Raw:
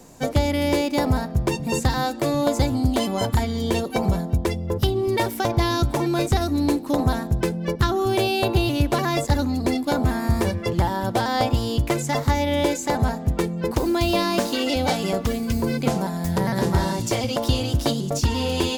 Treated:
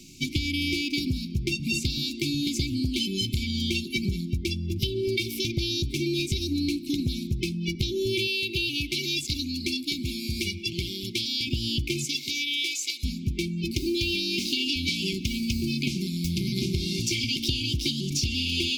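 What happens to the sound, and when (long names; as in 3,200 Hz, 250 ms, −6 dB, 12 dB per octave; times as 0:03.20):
0:08.27–0:11.47: low-shelf EQ 400 Hz −9.5 dB
0:12.04–0:13.03: high-pass filter 340 Hz → 1,400 Hz
whole clip: brick-wall band-stop 390–2,100 Hz; flat-topped bell 3,500 Hz +9.5 dB; downward compressor, threshold −22 dBFS; level −1.5 dB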